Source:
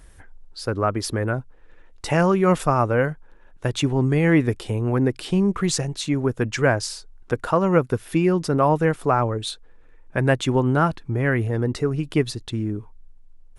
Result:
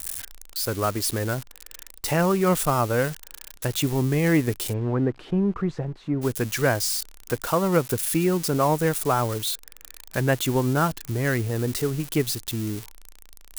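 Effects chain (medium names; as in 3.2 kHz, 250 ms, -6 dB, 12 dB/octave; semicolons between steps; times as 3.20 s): zero-crossing glitches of -18.5 dBFS; 4.72–6.21 s: low-pass 1.8 kHz -> 1 kHz 12 dB/octave; trim -3 dB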